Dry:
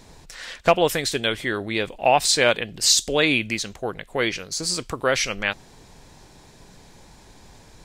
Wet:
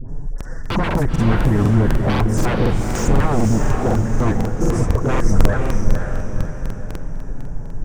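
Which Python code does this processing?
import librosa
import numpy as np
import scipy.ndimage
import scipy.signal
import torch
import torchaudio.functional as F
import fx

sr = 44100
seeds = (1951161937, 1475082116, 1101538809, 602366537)

y = fx.low_shelf(x, sr, hz=480.0, db=10.5)
y = fx.dispersion(y, sr, late='highs', ms=86.0, hz=1000.0)
y = fx.env_flanger(y, sr, rest_ms=9.0, full_db=-12.5)
y = scipy.signal.sosfilt(scipy.signal.ellip(3, 1.0, 40, [1700.0, 5700.0], 'bandstop', fs=sr, output='sos'), y)
y = 10.0 ** (-20.0 / 20.0) * (np.abs((y / 10.0 ** (-20.0 / 20.0) + 3.0) % 4.0 - 2.0) - 1.0)
y = fx.tilt_eq(y, sr, slope=-3.0)
y = fx.echo_diffused(y, sr, ms=512, feedback_pct=46, wet_db=-3.5)
y = fx.buffer_crackle(y, sr, first_s=0.36, period_s=0.25, block=2048, kind='repeat')
y = y * librosa.db_to_amplitude(2.5)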